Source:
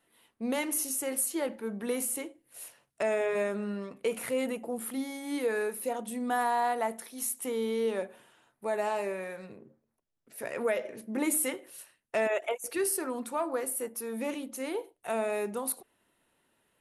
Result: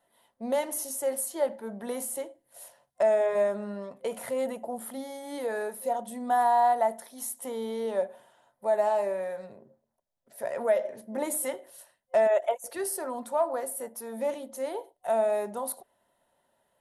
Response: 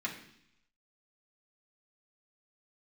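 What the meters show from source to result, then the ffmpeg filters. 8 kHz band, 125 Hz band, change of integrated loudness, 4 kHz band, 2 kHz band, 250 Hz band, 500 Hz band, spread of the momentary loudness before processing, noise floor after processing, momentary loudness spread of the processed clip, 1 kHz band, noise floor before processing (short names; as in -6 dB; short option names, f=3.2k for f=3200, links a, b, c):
-2.5 dB, n/a, +2.5 dB, -3.5 dB, -3.5 dB, -4.0 dB, +4.5 dB, 10 LU, -77 dBFS, 14 LU, +5.5 dB, -78 dBFS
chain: -af "superequalizer=6b=0.631:8b=3.16:9b=2.24:12b=0.501,volume=-2.5dB"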